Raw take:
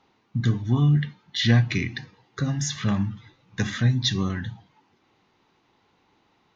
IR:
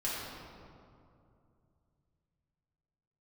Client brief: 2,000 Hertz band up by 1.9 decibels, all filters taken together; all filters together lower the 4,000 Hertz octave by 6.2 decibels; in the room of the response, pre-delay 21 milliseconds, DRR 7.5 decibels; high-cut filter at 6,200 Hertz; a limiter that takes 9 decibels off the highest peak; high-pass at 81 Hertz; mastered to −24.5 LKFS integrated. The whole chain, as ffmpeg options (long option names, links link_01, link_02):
-filter_complex "[0:a]highpass=81,lowpass=6200,equalizer=frequency=2000:width_type=o:gain=4,equalizer=frequency=4000:width_type=o:gain=-8,alimiter=limit=-15.5dB:level=0:latency=1,asplit=2[link_01][link_02];[1:a]atrim=start_sample=2205,adelay=21[link_03];[link_02][link_03]afir=irnorm=-1:irlink=0,volume=-13dB[link_04];[link_01][link_04]amix=inputs=2:normalize=0,volume=2dB"